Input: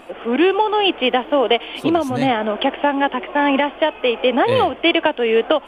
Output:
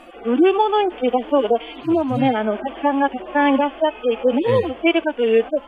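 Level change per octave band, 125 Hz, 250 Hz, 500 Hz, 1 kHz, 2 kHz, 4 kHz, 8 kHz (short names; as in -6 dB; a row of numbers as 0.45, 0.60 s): +2.0 dB, +0.5 dB, -0.5 dB, -2.0 dB, -5.0 dB, -9.5 dB, n/a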